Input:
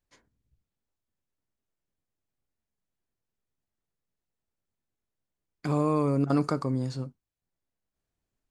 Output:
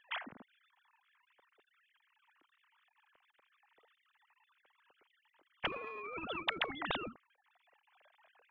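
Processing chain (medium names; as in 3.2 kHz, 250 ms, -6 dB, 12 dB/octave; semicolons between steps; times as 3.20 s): formants replaced by sine waves; compression 5:1, threshold -38 dBFS, peak gain reduction 16.5 dB; spectrum-flattening compressor 10:1; trim +10 dB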